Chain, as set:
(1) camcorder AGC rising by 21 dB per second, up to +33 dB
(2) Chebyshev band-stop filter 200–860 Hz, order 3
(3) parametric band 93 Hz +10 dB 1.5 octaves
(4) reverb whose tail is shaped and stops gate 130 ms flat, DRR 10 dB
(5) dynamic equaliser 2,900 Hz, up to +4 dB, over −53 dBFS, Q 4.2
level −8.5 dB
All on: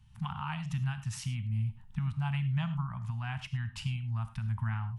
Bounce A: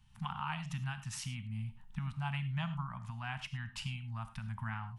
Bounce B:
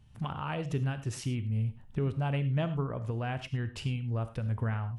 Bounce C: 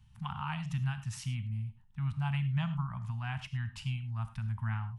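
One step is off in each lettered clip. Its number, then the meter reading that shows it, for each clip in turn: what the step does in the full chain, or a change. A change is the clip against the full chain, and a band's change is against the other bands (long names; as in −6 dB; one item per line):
3, 125 Hz band −7.0 dB
2, change in crest factor +2.0 dB
1, change in integrated loudness −1.0 LU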